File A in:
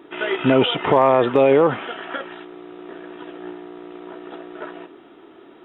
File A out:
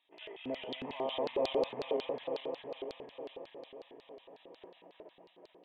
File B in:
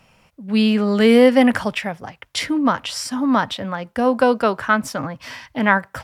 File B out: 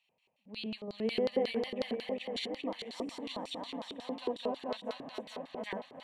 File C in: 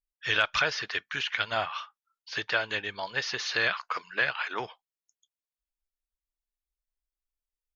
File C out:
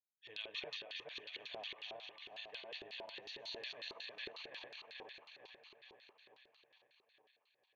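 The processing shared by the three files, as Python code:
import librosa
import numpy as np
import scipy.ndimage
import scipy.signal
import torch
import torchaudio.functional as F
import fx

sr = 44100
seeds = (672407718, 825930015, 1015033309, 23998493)

p1 = fx.reverse_delay_fb(x, sr, ms=219, feedback_pct=79, wet_db=-1.5)
p2 = fx.low_shelf(p1, sr, hz=110.0, db=-10.0)
p3 = fx.fixed_phaser(p2, sr, hz=1400.0, stages=6)
p4 = p3 + fx.echo_feedback(p3, sr, ms=560, feedback_pct=52, wet_db=-21.5, dry=0)
y = fx.filter_lfo_bandpass(p4, sr, shape='square', hz=5.5, low_hz=390.0, high_hz=4300.0, q=6.8)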